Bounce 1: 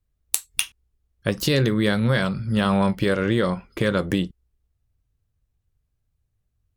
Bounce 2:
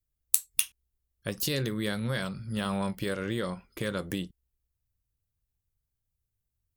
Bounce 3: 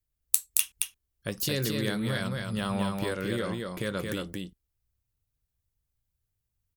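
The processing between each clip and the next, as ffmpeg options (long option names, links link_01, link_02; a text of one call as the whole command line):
ffmpeg -i in.wav -af "aemphasis=mode=production:type=50kf,volume=-11dB" out.wav
ffmpeg -i in.wav -af "aecho=1:1:223:0.631" out.wav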